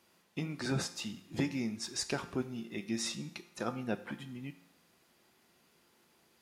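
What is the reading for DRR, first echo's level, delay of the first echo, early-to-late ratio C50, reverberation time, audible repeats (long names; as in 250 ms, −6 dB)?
9.5 dB, no echo audible, no echo audible, 13.5 dB, 0.70 s, no echo audible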